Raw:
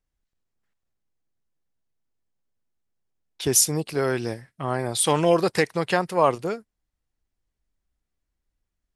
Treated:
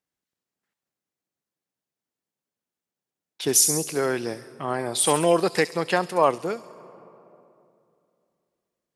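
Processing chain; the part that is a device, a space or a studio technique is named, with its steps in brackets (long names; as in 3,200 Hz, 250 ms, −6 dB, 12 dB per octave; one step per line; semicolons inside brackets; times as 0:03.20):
high-pass filter 180 Hz 12 dB per octave
delay with a high-pass on its return 68 ms, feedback 57%, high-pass 5,500 Hz, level −5 dB
compressed reverb return (on a send at −14 dB: convolution reverb RT60 2.6 s, pre-delay 5 ms + downward compressor, threshold −26 dBFS, peak gain reduction 10 dB)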